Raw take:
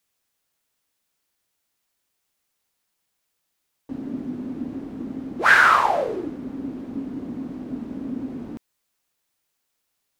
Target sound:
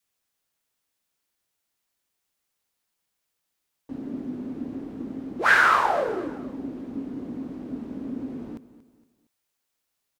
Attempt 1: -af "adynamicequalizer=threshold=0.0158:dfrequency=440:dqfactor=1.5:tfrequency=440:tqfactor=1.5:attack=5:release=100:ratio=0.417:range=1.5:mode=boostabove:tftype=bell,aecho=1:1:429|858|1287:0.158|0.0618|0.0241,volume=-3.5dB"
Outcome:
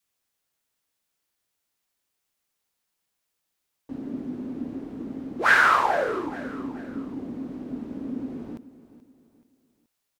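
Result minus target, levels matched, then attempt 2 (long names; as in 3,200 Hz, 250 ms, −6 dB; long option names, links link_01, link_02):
echo 197 ms late
-af "adynamicequalizer=threshold=0.0158:dfrequency=440:dqfactor=1.5:tfrequency=440:tqfactor=1.5:attack=5:release=100:ratio=0.417:range=1.5:mode=boostabove:tftype=bell,aecho=1:1:232|464|696:0.158|0.0618|0.0241,volume=-3.5dB"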